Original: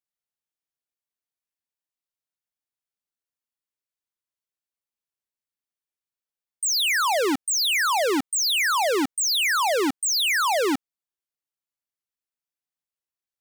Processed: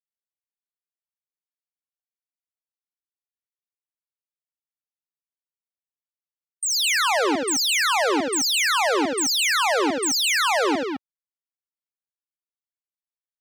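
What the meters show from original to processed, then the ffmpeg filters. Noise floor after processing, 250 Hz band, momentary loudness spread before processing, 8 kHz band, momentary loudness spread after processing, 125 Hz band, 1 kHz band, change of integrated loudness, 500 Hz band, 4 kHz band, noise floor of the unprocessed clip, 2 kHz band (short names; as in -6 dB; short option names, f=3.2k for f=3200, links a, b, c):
under -85 dBFS, +1.5 dB, 4 LU, +1.0 dB, 5 LU, n/a, +1.5 dB, +1.0 dB, +1.5 dB, +1.5 dB, under -85 dBFS, +1.5 dB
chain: -af "acontrast=42,afftdn=nr=23:nf=-31,aecho=1:1:75.8|209.9:0.447|0.562,volume=-6dB"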